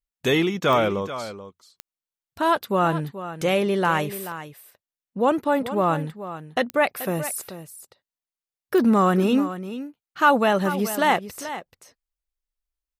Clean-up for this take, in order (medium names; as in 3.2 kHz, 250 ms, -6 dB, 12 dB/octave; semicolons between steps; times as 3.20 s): de-click; inverse comb 433 ms -12.5 dB